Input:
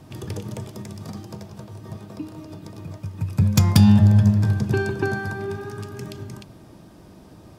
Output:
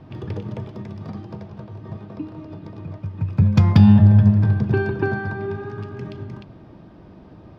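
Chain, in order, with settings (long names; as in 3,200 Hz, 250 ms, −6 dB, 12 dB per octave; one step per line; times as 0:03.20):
high-frequency loss of the air 300 metres
level +2.5 dB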